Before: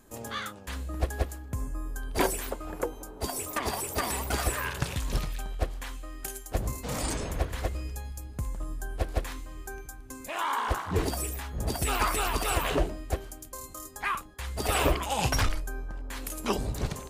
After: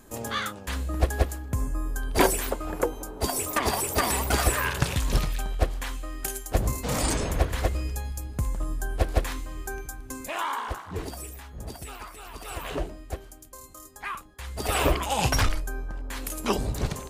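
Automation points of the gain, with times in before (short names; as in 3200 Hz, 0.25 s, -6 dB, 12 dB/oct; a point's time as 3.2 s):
10.18 s +5.5 dB
10.81 s -6 dB
11.61 s -6 dB
12.13 s -16.5 dB
12.77 s -4 dB
14.13 s -4 dB
15 s +3 dB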